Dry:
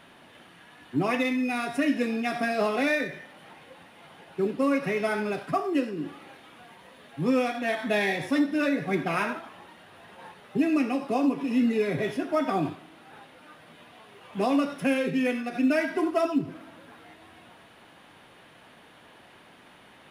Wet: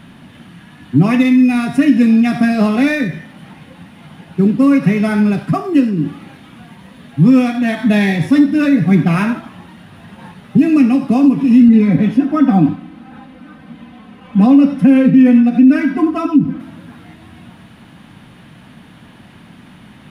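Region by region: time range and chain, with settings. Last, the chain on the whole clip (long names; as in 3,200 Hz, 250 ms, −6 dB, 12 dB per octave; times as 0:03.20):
0:11.68–0:16.60: high-shelf EQ 3,400 Hz −11.5 dB + comb filter 3.9 ms, depth 77%
whole clip: low shelf with overshoot 300 Hz +12 dB, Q 1.5; boost into a limiter +8.5 dB; level −1 dB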